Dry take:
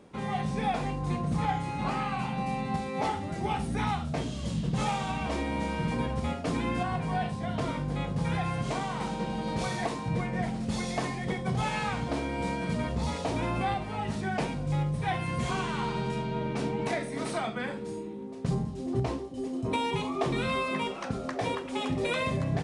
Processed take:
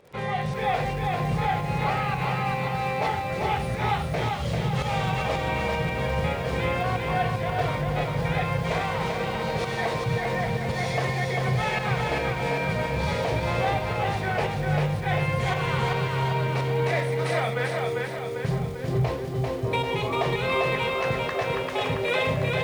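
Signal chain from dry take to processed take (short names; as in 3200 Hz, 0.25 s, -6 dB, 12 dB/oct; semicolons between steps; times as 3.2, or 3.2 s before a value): graphic EQ 125/250/500/2000/4000/8000 Hz +7/-11/+9/+7/+3/-4 dB; in parallel at +0.5 dB: limiter -22 dBFS, peak gain reduction 9.5 dB; on the sum: crackle 70/s -33 dBFS; pump 112 bpm, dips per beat 1, -10 dB, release 0.196 s; lo-fi delay 0.395 s, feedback 55%, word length 8-bit, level -3 dB; gain -4.5 dB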